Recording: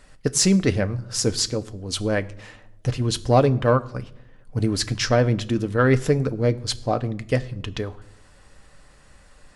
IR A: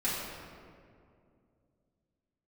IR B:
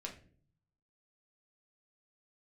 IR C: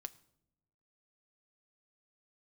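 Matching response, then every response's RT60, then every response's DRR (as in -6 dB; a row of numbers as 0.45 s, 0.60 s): C; 2.4 s, no single decay rate, no single decay rate; -10.5 dB, 0.0 dB, 9.5 dB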